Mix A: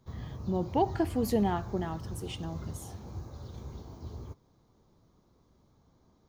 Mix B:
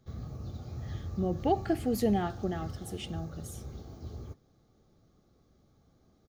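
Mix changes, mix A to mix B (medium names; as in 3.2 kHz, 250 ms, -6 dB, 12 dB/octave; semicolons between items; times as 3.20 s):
speech: entry +0.70 s; master: add Butterworth band-stop 970 Hz, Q 4.3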